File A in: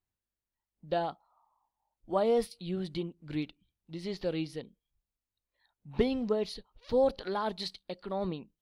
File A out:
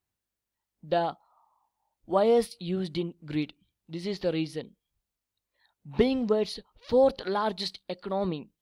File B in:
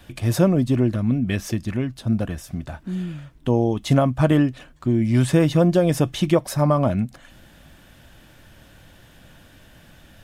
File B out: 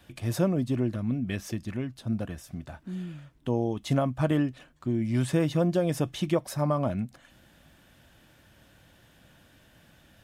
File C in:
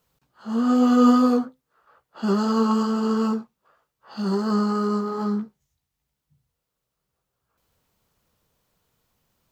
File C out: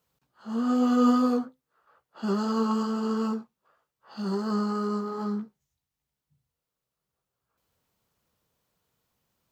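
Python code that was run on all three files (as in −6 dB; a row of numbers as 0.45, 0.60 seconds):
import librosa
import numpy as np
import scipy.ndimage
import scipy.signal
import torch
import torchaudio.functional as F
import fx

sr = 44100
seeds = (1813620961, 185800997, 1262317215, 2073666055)

y = fx.highpass(x, sr, hz=65.0, slope=6)
y = y * 10.0 ** (-30 / 20.0) / np.sqrt(np.mean(np.square(y)))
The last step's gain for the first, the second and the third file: +5.0, −7.5, −5.0 decibels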